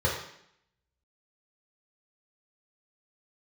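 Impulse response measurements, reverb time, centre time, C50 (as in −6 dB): 0.70 s, 41 ms, 3.5 dB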